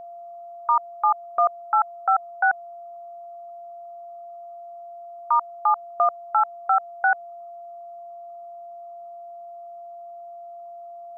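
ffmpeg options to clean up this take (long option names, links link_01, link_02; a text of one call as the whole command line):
ffmpeg -i in.wav -af "bandreject=frequency=690:width=30,afftdn=noise_reduction=27:noise_floor=-40" out.wav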